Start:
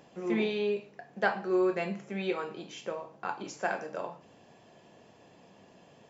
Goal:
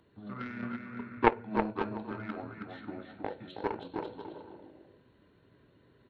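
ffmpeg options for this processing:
ffmpeg -i in.wav -filter_complex "[0:a]acrossover=split=450|1800[link_01][link_02][link_03];[link_01]acompressor=threshold=-42dB:ratio=6[link_04];[link_04][link_02][link_03]amix=inputs=3:normalize=0,asetrate=25476,aresample=44100,atempo=1.73107,aecho=1:1:320|544|700.8|810.6|887.4:0.631|0.398|0.251|0.158|0.1,aeval=exprs='0.188*(cos(1*acos(clip(val(0)/0.188,-1,1)))-cos(1*PI/2))+0.0531*(cos(3*acos(clip(val(0)/0.188,-1,1)))-cos(3*PI/2))':channel_layout=same,volume=9dB" out.wav

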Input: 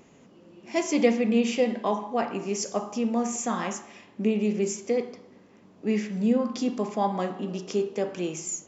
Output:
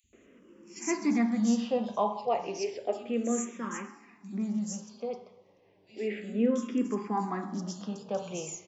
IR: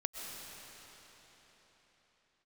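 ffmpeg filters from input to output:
-filter_complex "[0:a]asplit=3[link_01][link_02][link_03];[link_01]afade=type=out:start_time=3.43:duration=0.02[link_04];[link_02]flanger=delay=3.6:depth=1.8:regen=66:speed=1.3:shape=sinusoidal,afade=type=in:start_time=3.43:duration=0.02,afade=type=out:start_time=5.96:duration=0.02[link_05];[link_03]afade=type=in:start_time=5.96:duration=0.02[link_06];[link_04][link_05][link_06]amix=inputs=3:normalize=0,acrossover=split=150|3700[link_07][link_08][link_09];[link_07]adelay=40[link_10];[link_08]adelay=130[link_11];[link_10][link_11][link_09]amix=inputs=3:normalize=0,asplit=2[link_12][link_13];[link_13]afreqshift=-0.32[link_14];[link_12][link_14]amix=inputs=2:normalize=1"

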